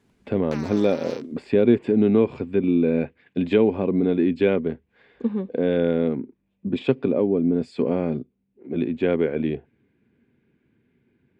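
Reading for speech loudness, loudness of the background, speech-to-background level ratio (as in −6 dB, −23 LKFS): −23.0 LKFS, −41.0 LKFS, 18.0 dB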